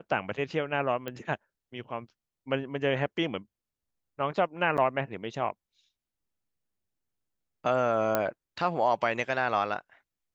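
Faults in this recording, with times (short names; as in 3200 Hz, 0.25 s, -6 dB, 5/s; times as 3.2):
1.08 pop -21 dBFS
4.77–4.78 gap 8.5 ms
8.15 pop -11 dBFS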